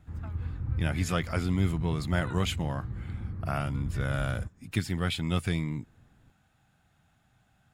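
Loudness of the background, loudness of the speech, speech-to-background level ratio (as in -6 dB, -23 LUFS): -37.5 LUFS, -31.5 LUFS, 6.0 dB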